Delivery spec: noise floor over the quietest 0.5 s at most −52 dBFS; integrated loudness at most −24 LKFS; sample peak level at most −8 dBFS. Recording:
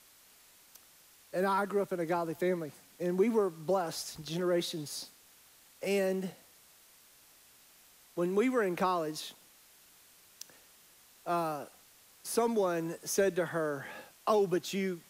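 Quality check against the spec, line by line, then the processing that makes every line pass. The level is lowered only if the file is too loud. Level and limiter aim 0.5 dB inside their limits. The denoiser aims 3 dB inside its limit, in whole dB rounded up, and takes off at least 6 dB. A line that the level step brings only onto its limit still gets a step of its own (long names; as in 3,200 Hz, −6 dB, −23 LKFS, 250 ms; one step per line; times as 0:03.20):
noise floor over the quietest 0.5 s −61 dBFS: in spec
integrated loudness −32.5 LKFS: in spec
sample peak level −16.5 dBFS: in spec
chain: no processing needed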